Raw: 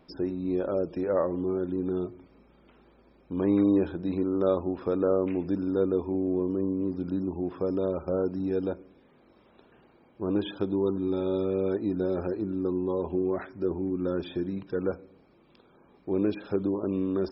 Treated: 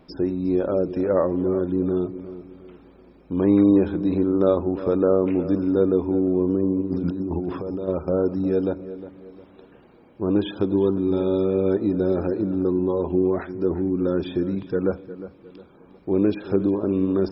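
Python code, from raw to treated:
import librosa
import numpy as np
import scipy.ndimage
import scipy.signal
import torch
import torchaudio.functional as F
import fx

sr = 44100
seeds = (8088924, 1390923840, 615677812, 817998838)

p1 = fx.low_shelf(x, sr, hz=490.0, db=3.5)
p2 = fx.over_compress(p1, sr, threshold_db=-32.0, ratio=-1.0, at=(6.8, 7.87), fade=0.02)
p3 = p2 + fx.echo_filtered(p2, sr, ms=357, feedback_pct=38, hz=3100.0, wet_db=-14, dry=0)
y = p3 * librosa.db_to_amplitude(4.0)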